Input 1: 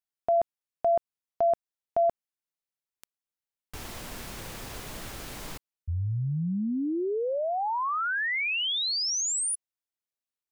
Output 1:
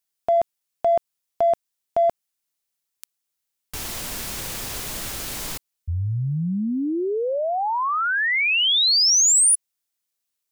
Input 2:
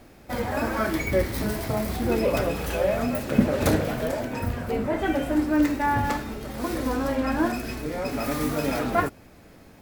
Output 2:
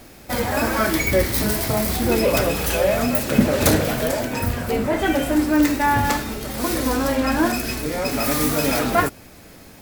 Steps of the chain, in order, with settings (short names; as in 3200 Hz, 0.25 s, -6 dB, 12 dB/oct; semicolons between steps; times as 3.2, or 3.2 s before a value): high shelf 3100 Hz +9.5 dB; in parallel at -9 dB: hard clip -20 dBFS; on the sum: gain +2 dB